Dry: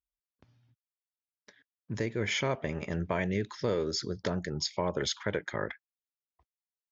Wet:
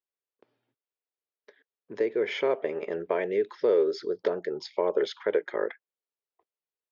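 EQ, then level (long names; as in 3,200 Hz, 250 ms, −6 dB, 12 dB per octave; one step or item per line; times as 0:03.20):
high-pass with resonance 420 Hz, resonance Q 3.5
high-frequency loss of the air 300 metres
high-shelf EQ 4,400 Hz +7.5 dB
0.0 dB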